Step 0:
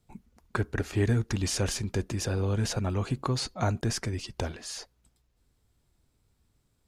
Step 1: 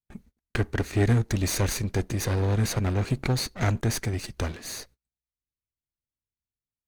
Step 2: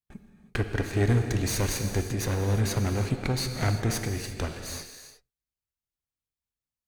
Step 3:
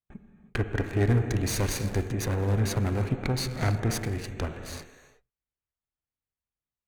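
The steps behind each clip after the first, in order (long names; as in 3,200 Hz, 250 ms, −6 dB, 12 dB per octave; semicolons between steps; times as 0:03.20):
lower of the sound and its delayed copy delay 0.47 ms; noise gate −56 dBFS, range −32 dB; level +4 dB
reverb whose tail is shaped and stops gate 380 ms flat, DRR 5.5 dB; level −2 dB
adaptive Wiener filter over 9 samples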